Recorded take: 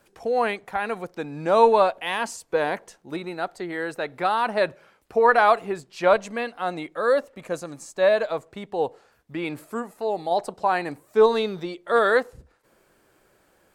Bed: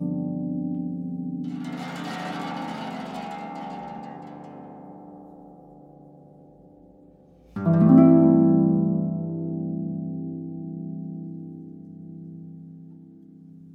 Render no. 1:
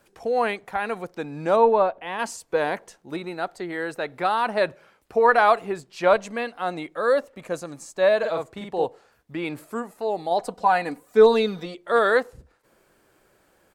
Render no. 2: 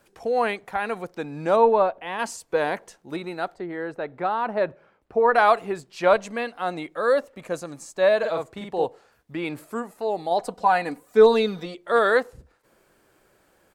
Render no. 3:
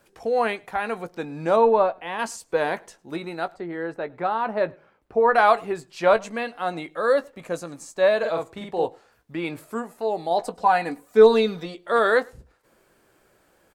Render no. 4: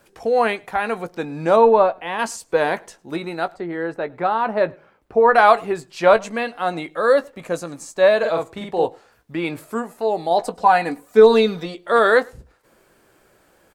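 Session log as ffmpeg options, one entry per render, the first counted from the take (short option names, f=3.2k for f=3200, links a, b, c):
-filter_complex "[0:a]asplit=3[a][b][c];[a]afade=t=out:st=1.55:d=0.02[d];[b]lowpass=f=1.1k:p=1,afade=t=in:st=1.55:d=0.02,afade=t=out:st=2.18:d=0.02[e];[c]afade=t=in:st=2.18:d=0.02[f];[d][e][f]amix=inputs=3:normalize=0,asplit=3[g][h][i];[g]afade=t=out:st=8.22:d=0.02[j];[h]asplit=2[k][l];[l]adelay=48,volume=-3dB[m];[k][m]amix=inputs=2:normalize=0,afade=t=in:st=8.22:d=0.02,afade=t=out:st=8.84:d=0.02[n];[i]afade=t=in:st=8.84:d=0.02[o];[j][n][o]amix=inputs=3:normalize=0,asettb=1/sr,asplit=3[p][q][r];[p]atrim=end=10.404[s];[q]atrim=start=10.4:end=11.75,asetpts=PTS-STARTPTS,afade=t=in:d=0.004:c=qsin,afade=t=out:st=1.346:d=0.004:c=qsin,aecho=1:1:4.1:0.7,atrim=end_sample=59535[t];[r]atrim=start=11.746[u];[s][t]acrossfade=d=0.004:c1=hsin:c2=qsin[v];[v][u]acrossfade=d=0.004:c1=qsin:c2=hsin"
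-filter_complex "[0:a]asettb=1/sr,asplit=3[a][b][c];[a]atrim=end=3.544[d];[b]atrim=start=3.54:end=5.35,asetpts=PTS-STARTPTS,afade=t=in:d=0.004:c=qsin,afade=t=out:st=1.806:d=0.004:c=qsin,lowpass=f=1.1k:p=1[e];[c]atrim=start=5.346[f];[d][e]acrossfade=d=0.004:c1=hsin:c2=qsin[g];[g][f]acrossfade=d=0.004:c1=qsin:c2=hsin"
-filter_complex "[0:a]asplit=2[a][b];[b]adelay=18,volume=-12.5dB[c];[a][c]amix=inputs=2:normalize=0,asplit=2[d][e];[e]adelay=105,volume=-27dB,highshelf=f=4k:g=-2.36[f];[d][f]amix=inputs=2:normalize=0"
-af "volume=4.5dB,alimiter=limit=-2dB:level=0:latency=1"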